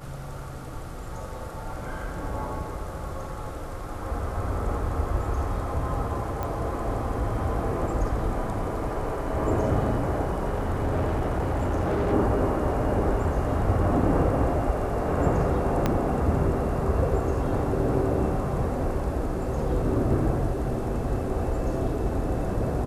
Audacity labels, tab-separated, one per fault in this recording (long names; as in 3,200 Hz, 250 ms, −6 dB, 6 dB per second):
6.430000	6.430000	click −18 dBFS
10.470000	12.140000	clipping −21.5 dBFS
15.860000	15.860000	click −10 dBFS